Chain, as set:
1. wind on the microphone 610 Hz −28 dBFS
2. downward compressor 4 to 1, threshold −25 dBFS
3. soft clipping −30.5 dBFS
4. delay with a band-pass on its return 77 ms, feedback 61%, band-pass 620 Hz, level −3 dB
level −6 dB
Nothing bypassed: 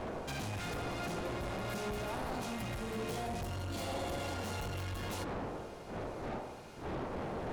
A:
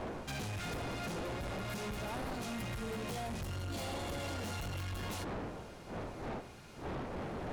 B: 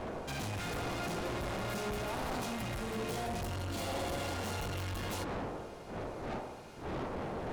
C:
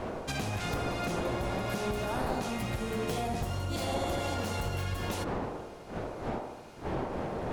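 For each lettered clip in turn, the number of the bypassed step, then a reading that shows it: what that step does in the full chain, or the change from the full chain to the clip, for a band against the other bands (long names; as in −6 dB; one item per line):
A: 4, echo-to-direct ratio −5.0 dB to none audible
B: 2, change in momentary loudness spread +1 LU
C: 3, distortion level −9 dB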